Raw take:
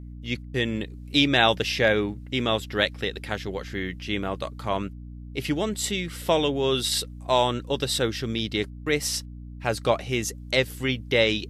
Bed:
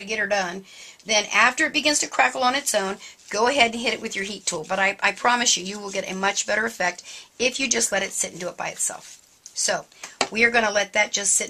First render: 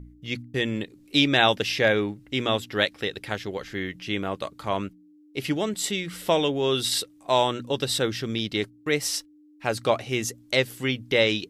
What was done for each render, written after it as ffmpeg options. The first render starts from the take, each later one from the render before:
-af "bandreject=f=60:t=h:w=4,bandreject=f=120:t=h:w=4,bandreject=f=180:t=h:w=4,bandreject=f=240:t=h:w=4"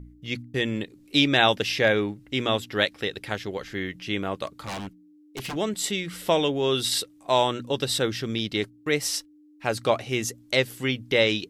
-filter_complex "[0:a]asettb=1/sr,asplit=3[s0][s1][s2];[s0]atrim=end=4.464[s3];[s1]atrim=start=4.46:end=5.56,asetpts=PTS-STARTPTS,afade=t=in:d=0.004:c=qsin,afade=t=out:st=1.096:d=0.004:c=qsin,aeval=exprs='0.0422*(abs(mod(val(0)/0.0422+3,4)-2)-1)':c=same[s4];[s2]atrim=start=5.556[s5];[s3][s4]acrossfade=d=0.004:c1=hsin:c2=qsin[s6];[s6][s5]acrossfade=d=0.004:c1=qsin:c2=hsin"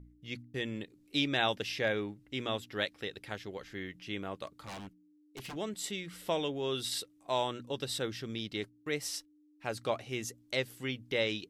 -af "volume=0.299"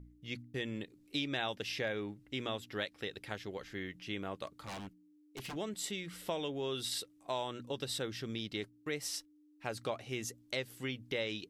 -af "acompressor=threshold=0.0178:ratio=2.5"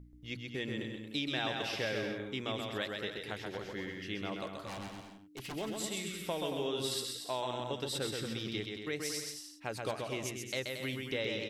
-af "aecho=1:1:130|227.5|300.6|355.5|396.6:0.631|0.398|0.251|0.158|0.1"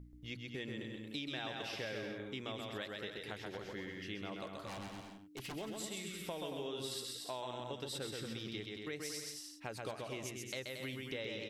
-af "acompressor=threshold=0.00631:ratio=2"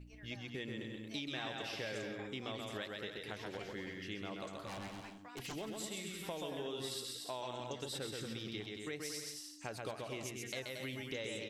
-filter_complex "[1:a]volume=0.0158[s0];[0:a][s0]amix=inputs=2:normalize=0"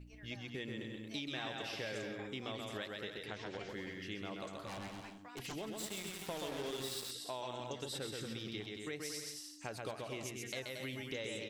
-filter_complex "[0:a]asettb=1/sr,asplit=3[s0][s1][s2];[s0]atrim=end=3.264[s3];[s1]atrim=start=3.26:end=3.69,asetpts=PTS-STARTPTS,afade=t=in:d=0.004:c=qsin,afade=t=out:st=0.426:d=0.004:c=qsin,lowpass=f=7600:w=0.5412,lowpass=f=7600:w=1.3066[s4];[s2]atrim=start=3.686[s5];[s3][s4]acrossfade=d=0.004:c1=hsin:c2=qsin[s6];[s6][s5]acrossfade=d=0.004:c1=qsin:c2=hsin,asettb=1/sr,asplit=3[s7][s8][s9];[s7]atrim=end=5.784[s10];[s8]atrim=start=5.78:end=7.11,asetpts=PTS-STARTPTS,afade=t=in:d=0.004:c=qsin,afade=t=out:st=1.326:d=0.004:c=qsin,acrusher=bits=6:mix=0:aa=0.5[s11];[s9]atrim=start=7.106[s12];[s10][s11]acrossfade=d=0.004:c1=hsin:c2=qsin[s13];[s13][s12]acrossfade=d=0.004:c1=qsin:c2=hsin"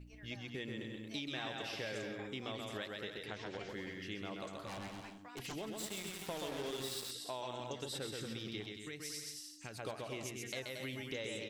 -filter_complex "[0:a]asettb=1/sr,asplit=3[s0][s1][s2];[s0]atrim=end=8.724[s3];[s1]atrim=start=8.72:end=9.79,asetpts=PTS-STARTPTS,afade=t=in:d=0.004:c=qsin,afade=t=out:st=1.066:d=0.004:c=qsin,equalizer=f=690:t=o:w=2:g=-9[s4];[s2]atrim=start=9.786[s5];[s3][s4]acrossfade=d=0.004:c1=hsin:c2=qsin[s6];[s6][s5]acrossfade=d=0.004:c1=qsin:c2=hsin"

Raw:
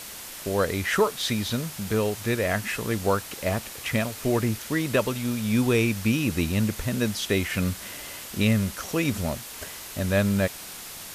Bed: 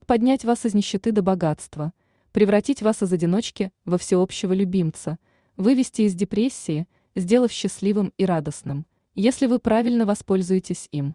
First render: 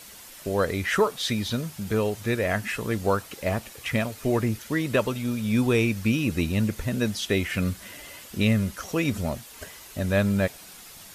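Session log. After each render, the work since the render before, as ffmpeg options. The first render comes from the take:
-af "afftdn=nr=8:nf=-40"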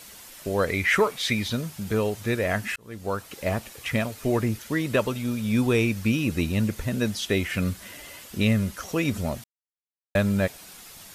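-filter_complex "[0:a]asettb=1/sr,asplit=3[s0][s1][s2];[s0]atrim=end=0.674[s3];[s1]atrim=start=0.67:end=1.48,asetpts=PTS-STARTPTS,afade=t=in:d=0.004:c=qsin,afade=t=out:st=0.806:d=0.004:c=qsin,equalizer=f=2200:t=o:w=0.37:g=10.5[s4];[s2]atrim=start=1.476[s5];[s3][s4]acrossfade=d=0.004:c1=hsin:c2=qsin[s6];[s6][s5]acrossfade=d=0.004:c1=qsin:c2=hsin,asplit=4[s7][s8][s9][s10];[s7]atrim=end=2.76,asetpts=PTS-STARTPTS,afade=t=out:st=2.756:d=0.004:c=hsin[s11];[s8]atrim=start=2.76:end=9.44,asetpts=PTS-STARTPTS,afade=t=in:d=0.65,afade=t=out:st=6.676:d=0.004:c=hsin[s12];[s9]atrim=start=9.44:end=10.15,asetpts=PTS-STARTPTS,volume=0[s13];[s10]atrim=start=10.15,asetpts=PTS-STARTPTS,afade=t=in:d=0.004:c=hsin[s14];[s11][s12][s13][s14]concat=n=4:v=0:a=1"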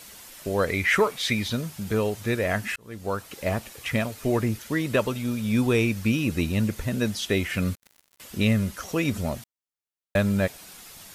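-filter_complex "[0:a]asettb=1/sr,asplit=3[s0][s1][s2];[s0]atrim=end=7.754[s3];[s1]atrim=start=7.75:end=8.2,asetpts=PTS-STARTPTS,afade=t=in:d=0.004:c=qsin,afade=t=out:st=0.446:d=0.004:c=qsin,acrusher=bits=4:mix=0:aa=0.5[s4];[s2]atrim=start=8.196[s5];[s3][s4]acrossfade=d=0.004:c1=hsin:c2=qsin[s6];[s6][s5]acrossfade=d=0.004:c1=qsin:c2=hsin"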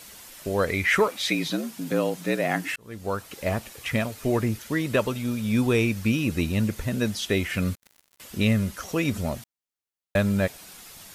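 -filter_complex "[0:a]asettb=1/sr,asplit=3[s0][s1][s2];[s0]atrim=end=1.084[s3];[s1]atrim=start=1.08:end=2.76,asetpts=PTS-STARTPTS,afade=t=in:d=0.004:c=qsin,afade=t=out:st=1.676:d=0.004:c=qsin,afreqshift=71[s4];[s2]atrim=start=2.756[s5];[s3][s4]acrossfade=d=0.004:c1=hsin:c2=qsin[s6];[s6][s5]acrossfade=d=0.004:c1=qsin:c2=hsin"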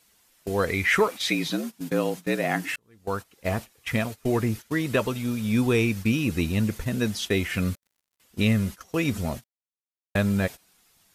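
-af "agate=range=0.141:threshold=0.0251:ratio=16:detection=peak,bandreject=f=580:w=12"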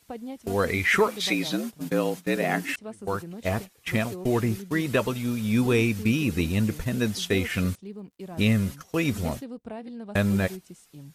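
-filter_complex "[1:a]volume=0.112[s0];[0:a][s0]amix=inputs=2:normalize=0"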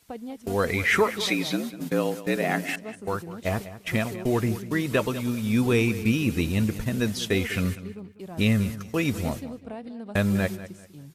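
-filter_complex "[0:a]asplit=2[s0][s1];[s1]adelay=196,lowpass=f=4400:p=1,volume=0.188,asplit=2[s2][s3];[s3]adelay=196,lowpass=f=4400:p=1,volume=0.29,asplit=2[s4][s5];[s5]adelay=196,lowpass=f=4400:p=1,volume=0.29[s6];[s0][s2][s4][s6]amix=inputs=4:normalize=0"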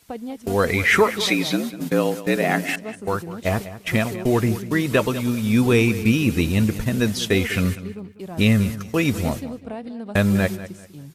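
-af "volume=1.78"

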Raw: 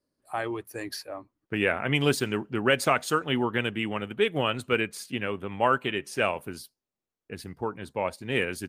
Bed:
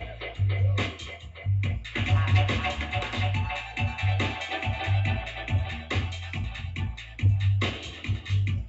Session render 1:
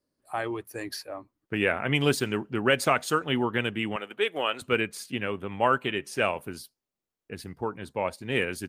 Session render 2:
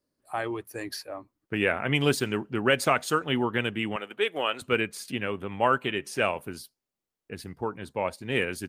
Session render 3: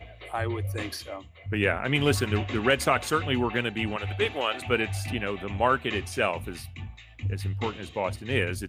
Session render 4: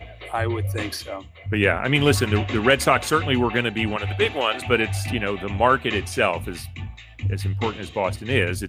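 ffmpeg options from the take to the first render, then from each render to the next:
-filter_complex "[0:a]asettb=1/sr,asplit=3[s0][s1][s2];[s0]atrim=end=3.964[s3];[s1]atrim=start=3.96:end=4.62,asetpts=PTS-STARTPTS,afade=t=in:d=0.004:c=qsin,afade=t=out:st=0.656:d=0.004:c=qsin,highpass=430[s4];[s2]atrim=start=4.616[s5];[s3][s4]acrossfade=d=0.004:c1=hsin:c2=qsin[s6];[s6][s5]acrossfade=d=0.004:c1=qsin:c2=hsin"
-filter_complex "[0:a]asettb=1/sr,asplit=3[s0][s1][s2];[s0]atrim=end=5.084[s3];[s1]atrim=start=5.08:end=6.29,asetpts=PTS-STARTPTS,afade=t=in:d=0.004:c=qsin,afade=t=out:st=1.206:d=0.004:c=qsin,acompressor=mode=upward:threshold=0.02:ratio=2.5:attack=3.2:release=140:knee=2.83:detection=peak[s4];[s2]atrim=start=6.286[s5];[s3][s4]acrossfade=d=0.004:c1=hsin:c2=qsin[s6];[s6][s5]acrossfade=d=0.004:c1=qsin:c2=hsin"
-filter_complex "[1:a]volume=0.398[s0];[0:a][s0]amix=inputs=2:normalize=0"
-af "volume=1.88"

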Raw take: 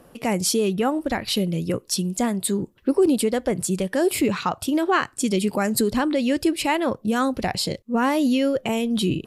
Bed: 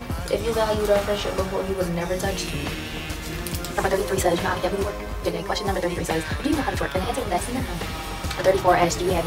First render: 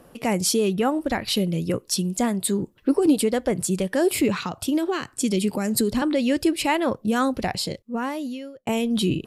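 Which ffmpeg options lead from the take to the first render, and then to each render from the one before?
-filter_complex "[0:a]asettb=1/sr,asplit=3[s0][s1][s2];[s0]atrim=end=2.784[s3];[s1]atrim=start=2.78:end=3.19,asetpts=PTS-STARTPTS,afade=t=in:d=0.004:c=qsin,afade=t=out:st=0.406:d=0.004:c=qsin,aecho=1:1:6.6:0.46,atrim=end_sample=18081[s4];[s2]atrim=start=3.186[s5];[s3][s4]acrossfade=d=0.004:c1=hsin:c2=qsin[s6];[s6][s5]acrossfade=d=0.004:c1=qsin:c2=hsin,asettb=1/sr,asplit=3[s7][s8][s9];[s7]atrim=end=4.444[s10];[s8]atrim=start=4.44:end=6.02,asetpts=PTS-STARTPTS,afade=t=in:d=0.004:c=qsin,afade=t=out:st=1.576:d=0.004:c=qsin,acrossover=split=410|3000[s11][s12][s13];[s12]acompressor=threshold=0.0282:ratio=3:attack=3.2:release=140:knee=2.83:detection=peak[s14];[s11][s14][s13]amix=inputs=3:normalize=0[s15];[s9]atrim=start=6.016[s16];[s10][s15]acrossfade=d=0.004:c1=hsin:c2=qsin[s17];[s17][s16]acrossfade=d=0.004:c1=qsin:c2=hsin,asplit=2[s18][s19];[s18]atrim=end=8.67,asetpts=PTS-STARTPTS,afade=t=out:st=7.31:d=1.36[s20];[s19]atrim=start=8.67,asetpts=PTS-STARTPTS,afade=t=in:d=0.004:c=hsin[s21];[s20][s21]concat=n=2:v=0:a=1"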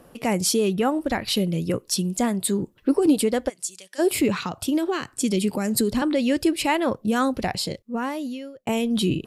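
-filter_complex "[0:a]asplit=3[s0][s1][s2];[s0]afade=t=out:st=3.48:d=0.02[s3];[s1]bandpass=f=6300:t=q:w=1.2,afade=t=in:st=3.48:d=0.02,afade=t=out:st=3.98:d=0.02[s4];[s2]afade=t=in:st=3.98:d=0.02[s5];[s3][s4][s5]amix=inputs=3:normalize=0"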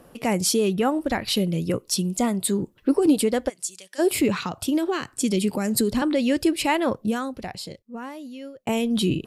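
-filter_complex "[0:a]asettb=1/sr,asplit=3[s0][s1][s2];[s0]atrim=end=1.744[s3];[s1]atrim=start=1.74:end=2.46,asetpts=PTS-STARTPTS,afade=t=in:d=0.004:c=qsin,afade=t=out:st=0.716:d=0.004:c=qsin,asuperstop=centerf=1700:order=4:qfactor=7.5[s4];[s2]atrim=start=2.456[s5];[s3][s4]acrossfade=d=0.004:c1=hsin:c2=qsin[s6];[s6][s5]acrossfade=d=0.004:c1=qsin:c2=hsin,asplit=3[s7][s8][s9];[s7]atrim=end=7.21,asetpts=PTS-STARTPTS,afade=t=out:st=7.07:d=0.14:silence=0.398107[s10];[s8]atrim=start=7.21:end=8.32,asetpts=PTS-STARTPTS,volume=0.398[s11];[s9]atrim=start=8.32,asetpts=PTS-STARTPTS,afade=t=in:d=0.14:silence=0.398107[s12];[s10][s11][s12]concat=n=3:v=0:a=1"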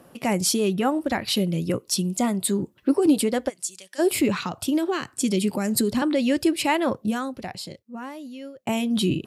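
-af "highpass=80,bandreject=f=460:w=12"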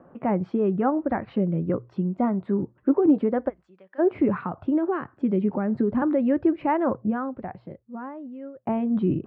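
-af "lowpass=f=1500:w=0.5412,lowpass=f=1500:w=1.3066,bandreject=f=60:t=h:w=6,bandreject=f=120:t=h:w=6"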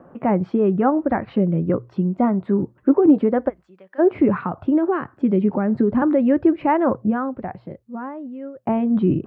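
-af "volume=1.78"

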